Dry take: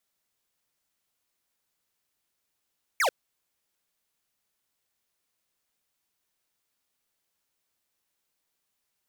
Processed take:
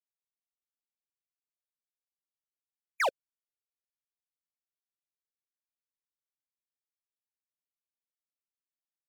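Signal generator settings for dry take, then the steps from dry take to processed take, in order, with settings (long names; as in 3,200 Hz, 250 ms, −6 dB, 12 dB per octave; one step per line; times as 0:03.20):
single falling chirp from 2,400 Hz, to 460 Hz, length 0.09 s square, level −23.5 dB
spectral dynamics exaggerated over time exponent 2
high-shelf EQ 5,200 Hz −10.5 dB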